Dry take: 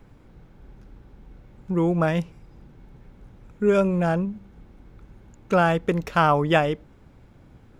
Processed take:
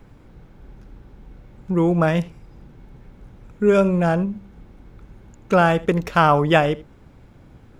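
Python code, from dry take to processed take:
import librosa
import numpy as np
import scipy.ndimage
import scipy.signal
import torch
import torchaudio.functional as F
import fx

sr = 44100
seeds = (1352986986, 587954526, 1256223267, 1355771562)

y = x + 10.0 ** (-19.5 / 20.0) * np.pad(x, (int(81 * sr / 1000.0), 0))[:len(x)]
y = F.gain(torch.from_numpy(y), 3.5).numpy()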